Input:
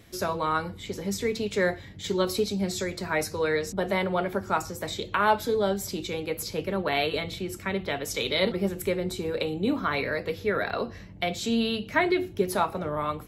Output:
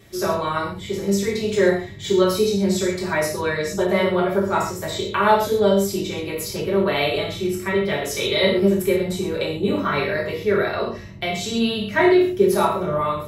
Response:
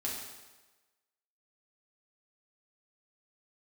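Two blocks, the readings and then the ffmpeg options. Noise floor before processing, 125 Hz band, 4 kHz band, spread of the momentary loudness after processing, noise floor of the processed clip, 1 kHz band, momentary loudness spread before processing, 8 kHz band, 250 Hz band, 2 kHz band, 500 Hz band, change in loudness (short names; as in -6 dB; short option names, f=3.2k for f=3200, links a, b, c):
-43 dBFS, +7.0 dB, +5.5 dB, 9 LU, -34 dBFS, +5.5 dB, 7 LU, +6.0 dB, +8.0 dB, +5.0 dB, +8.5 dB, +7.0 dB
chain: -filter_complex "[1:a]atrim=start_sample=2205,afade=t=out:st=0.27:d=0.01,atrim=end_sample=12348,asetrate=66150,aresample=44100[a];[0:a][a]afir=irnorm=-1:irlink=0,volume=6.5dB"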